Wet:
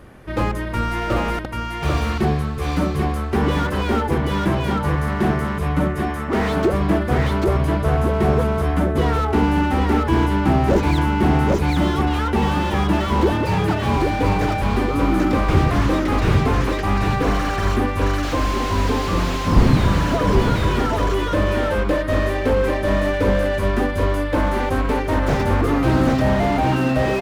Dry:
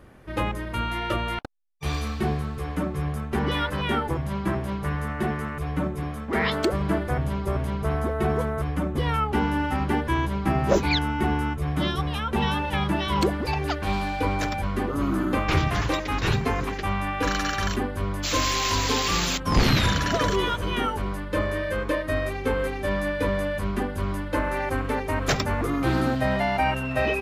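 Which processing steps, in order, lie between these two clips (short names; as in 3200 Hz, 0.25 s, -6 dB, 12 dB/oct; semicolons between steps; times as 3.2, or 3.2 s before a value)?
13.32–13.97 frequency shift +34 Hz; echo 0.788 s -5 dB; slew limiter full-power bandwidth 47 Hz; gain +6.5 dB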